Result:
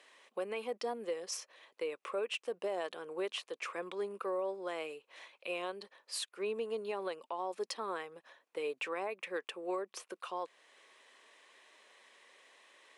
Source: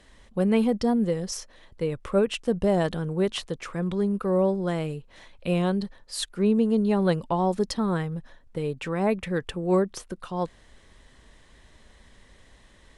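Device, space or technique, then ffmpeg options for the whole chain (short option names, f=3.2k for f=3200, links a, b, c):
laptop speaker: -af "highpass=f=390:w=0.5412,highpass=f=390:w=1.3066,equalizer=f=1.1k:t=o:w=0.26:g=5,equalizer=f=2.5k:t=o:w=0.48:g=8,alimiter=limit=-23dB:level=0:latency=1:release=359,volume=-5dB"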